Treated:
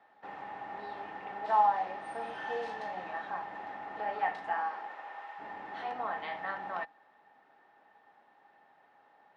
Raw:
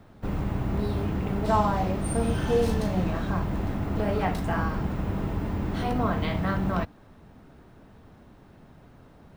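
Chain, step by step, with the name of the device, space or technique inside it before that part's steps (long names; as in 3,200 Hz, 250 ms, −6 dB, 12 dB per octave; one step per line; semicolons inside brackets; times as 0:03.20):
tin-can telephone (band-pass filter 670–3,200 Hz; hollow resonant body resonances 820/1,800 Hz, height 16 dB, ringing for 65 ms)
0:04.55–0:05.38: high-pass filter 240 Hz → 990 Hz 12 dB per octave
level −7 dB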